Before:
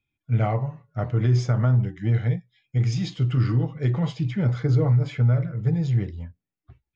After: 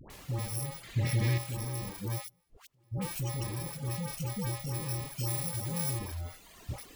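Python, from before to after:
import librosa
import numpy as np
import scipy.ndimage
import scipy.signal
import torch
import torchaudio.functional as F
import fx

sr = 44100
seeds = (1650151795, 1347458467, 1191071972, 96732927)

y = fx.bit_reversed(x, sr, seeds[0], block=64)
y = fx.recorder_agc(y, sr, target_db=-20.5, rise_db_per_s=34.0, max_gain_db=30)
y = fx.dmg_noise_colour(y, sr, seeds[1], colour='pink', level_db=-47.0)
y = fx.tube_stage(y, sr, drive_db=30.0, bias=0.2)
y = fx.gate_flip(y, sr, shuts_db=-36.0, range_db=-25, at=(2.18, 2.91), fade=0.02)
y = fx.notch(y, sr, hz=1500.0, q=11.0)
y = fx.dispersion(y, sr, late='highs', ms=102.0, hz=830.0)
y = fx.high_shelf(y, sr, hz=5500.0, db=8.0, at=(5.27, 5.99))
y = fx.dereverb_blind(y, sr, rt60_s=1.5)
y = fx.graphic_eq(y, sr, hz=(125, 250, 500, 1000, 2000, 4000), db=(7, 5, 4, -4, 12, 6), at=(0.83, 1.38))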